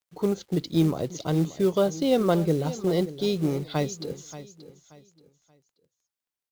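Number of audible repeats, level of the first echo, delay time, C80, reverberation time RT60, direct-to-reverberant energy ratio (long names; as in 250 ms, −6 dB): 2, −15.0 dB, 580 ms, no reverb audible, no reverb audible, no reverb audible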